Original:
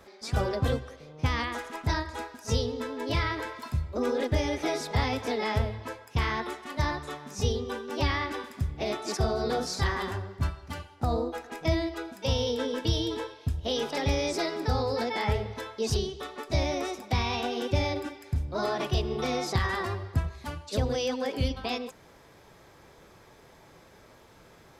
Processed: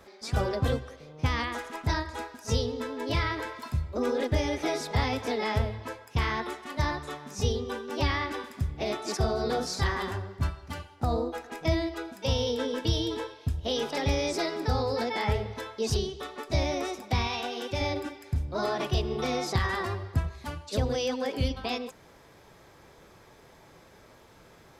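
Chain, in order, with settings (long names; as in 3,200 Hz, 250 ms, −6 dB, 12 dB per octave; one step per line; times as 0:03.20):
0:17.27–0:17.81: low-shelf EQ 440 Hz −8.5 dB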